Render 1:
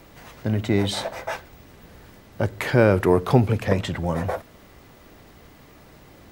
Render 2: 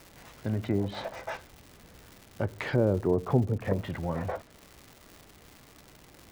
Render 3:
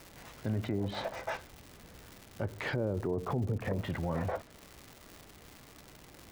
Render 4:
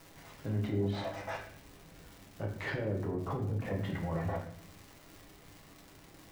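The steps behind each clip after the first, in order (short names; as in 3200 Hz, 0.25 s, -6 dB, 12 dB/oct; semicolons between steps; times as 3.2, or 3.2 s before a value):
treble ducked by the level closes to 620 Hz, closed at -15 dBFS; crackle 260/s -32 dBFS; gain -7 dB
limiter -24 dBFS, peak gain reduction 11.5 dB
reverb RT60 0.65 s, pre-delay 6 ms, DRR -1 dB; gain -5.5 dB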